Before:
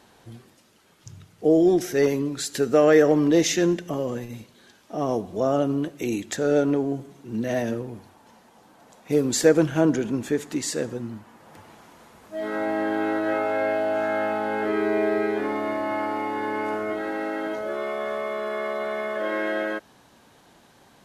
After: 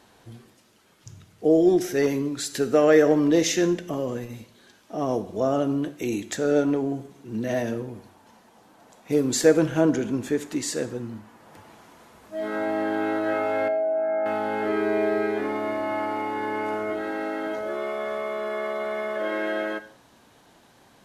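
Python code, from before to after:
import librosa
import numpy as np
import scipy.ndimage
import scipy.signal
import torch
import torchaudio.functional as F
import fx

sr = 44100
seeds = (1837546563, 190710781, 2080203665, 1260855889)

y = fx.spec_expand(x, sr, power=1.8, at=(13.68, 14.26))
y = fx.rev_gated(y, sr, seeds[0], gate_ms=210, shape='falling', drr_db=11.5)
y = F.gain(torch.from_numpy(y), -1.0).numpy()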